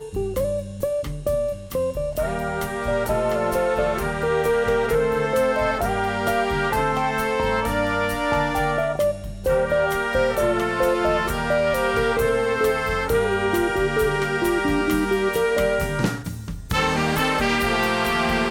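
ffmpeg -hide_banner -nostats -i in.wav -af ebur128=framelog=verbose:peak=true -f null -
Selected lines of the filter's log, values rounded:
Integrated loudness:
  I:         -22.0 LUFS
  Threshold: -32.0 LUFS
Loudness range:
  LRA:         2.5 LU
  Threshold: -41.9 LUFS
  LRA low:   -23.6 LUFS
  LRA high:  -21.1 LUFS
True peak:
  Peak:      -10.4 dBFS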